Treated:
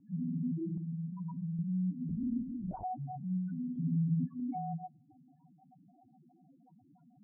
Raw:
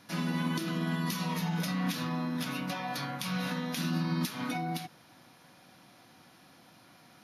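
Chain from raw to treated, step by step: loudest bins only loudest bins 2; 0.77–1.59 dynamic EQ 220 Hz, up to -6 dB, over -48 dBFS, Q 1; LPF 1100 Hz 24 dB/oct; 3.75–4.4 comb 7.1 ms, depth 70%; on a send at -22 dB: reverb RT60 0.50 s, pre-delay 3 ms; 2.09–2.84 on the sum: LPC vocoder at 8 kHz whisper; in parallel at -1 dB: compressor, threshold -48 dBFS, peak gain reduction 18 dB

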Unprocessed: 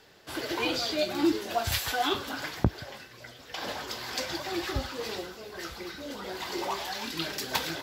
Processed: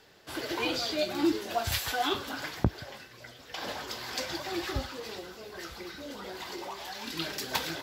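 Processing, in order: 4.84–7.07 compressor, threshold -35 dBFS, peak gain reduction 7.5 dB; gain -1.5 dB

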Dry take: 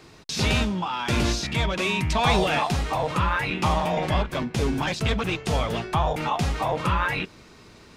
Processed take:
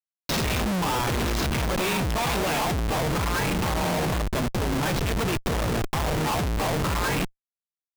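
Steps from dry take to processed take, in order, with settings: Schmitt trigger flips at -28.5 dBFS

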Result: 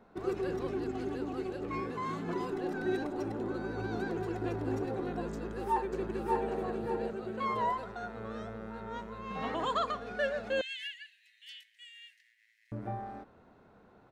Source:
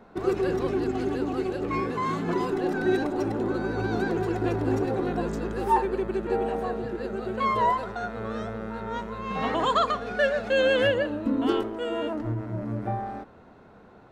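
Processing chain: 5.33–6.51 echo throw 0.59 s, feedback 35%, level -2.5 dB; 10.61–12.72 steep high-pass 1800 Hz 96 dB/oct; gain -8.5 dB

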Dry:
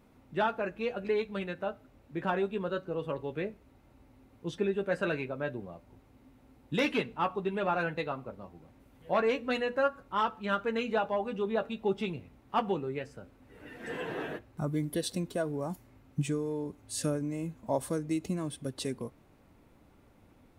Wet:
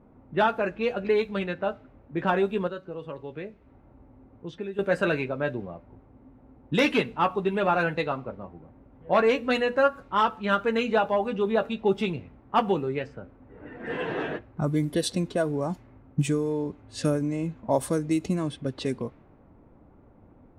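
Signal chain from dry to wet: low-pass opened by the level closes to 1000 Hz, open at -27.5 dBFS; 2.67–4.79 compressor 2:1, threshold -47 dBFS, peak gain reduction 12 dB; gain +6.5 dB

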